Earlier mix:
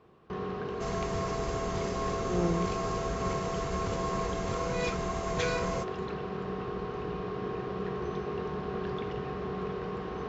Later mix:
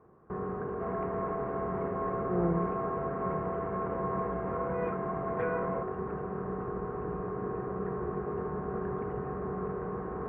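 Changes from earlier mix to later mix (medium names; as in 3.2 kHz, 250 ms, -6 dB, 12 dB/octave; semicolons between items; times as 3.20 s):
second sound: add high-pass 190 Hz 12 dB/octave; master: add inverse Chebyshev low-pass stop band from 4.1 kHz, stop band 50 dB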